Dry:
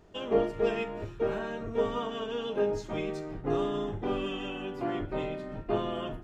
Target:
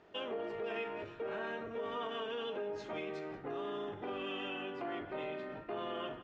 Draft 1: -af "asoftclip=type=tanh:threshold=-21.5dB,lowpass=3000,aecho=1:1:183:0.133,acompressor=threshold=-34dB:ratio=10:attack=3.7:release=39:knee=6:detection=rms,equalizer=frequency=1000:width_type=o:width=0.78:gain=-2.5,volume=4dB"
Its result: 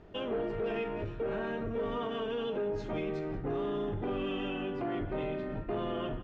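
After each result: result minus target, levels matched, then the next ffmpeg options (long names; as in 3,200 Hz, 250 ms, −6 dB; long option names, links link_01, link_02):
soft clipping: distortion +17 dB; 1,000 Hz band −3.0 dB
-af "asoftclip=type=tanh:threshold=-10.5dB,lowpass=3000,aecho=1:1:183:0.133,acompressor=threshold=-34dB:ratio=10:attack=3.7:release=39:knee=6:detection=rms,equalizer=frequency=1000:width_type=o:width=0.78:gain=-2.5,volume=4dB"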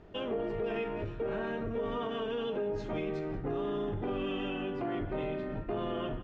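1,000 Hz band −3.0 dB
-af "asoftclip=type=tanh:threshold=-10.5dB,lowpass=3000,aecho=1:1:183:0.133,acompressor=threshold=-34dB:ratio=10:attack=3.7:release=39:knee=6:detection=rms,highpass=frequency=740:poles=1,equalizer=frequency=1000:width_type=o:width=0.78:gain=-2.5,volume=4dB"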